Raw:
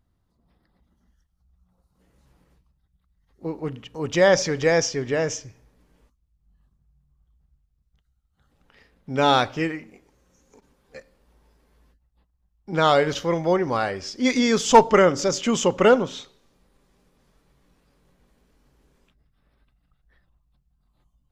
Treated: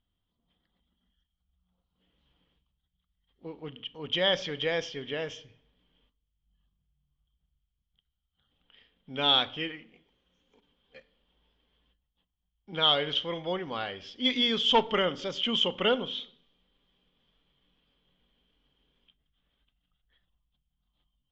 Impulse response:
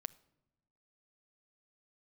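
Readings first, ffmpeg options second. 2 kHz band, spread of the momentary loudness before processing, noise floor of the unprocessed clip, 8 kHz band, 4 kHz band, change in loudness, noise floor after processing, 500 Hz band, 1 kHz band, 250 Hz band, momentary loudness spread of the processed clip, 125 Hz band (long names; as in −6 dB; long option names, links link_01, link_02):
−8.0 dB, 16 LU, −71 dBFS, below −20 dB, +4.0 dB, −6.5 dB, −82 dBFS, −11.5 dB, −11.0 dB, −11.0 dB, 17 LU, −12.5 dB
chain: -filter_complex "[0:a]lowpass=frequency=3200:width_type=q:width=15,bandreject=frequency=60:width_type=h:width=6,bandreject=frequency=120:width_type=h:width=6[link_01];[1:a]atrim=start_sample=2205,asetrate=70560,aresample=44100[link_02];[link_01][link_02]afir=irnorm=-1:irlink=0,volume=-4.5dB"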